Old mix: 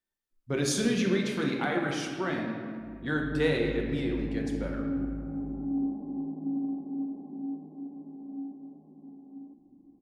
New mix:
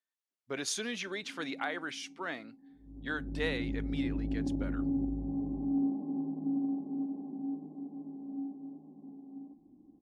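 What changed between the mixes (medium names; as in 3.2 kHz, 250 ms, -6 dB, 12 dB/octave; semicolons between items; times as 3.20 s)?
speech: add frequency weighting A; reverb: off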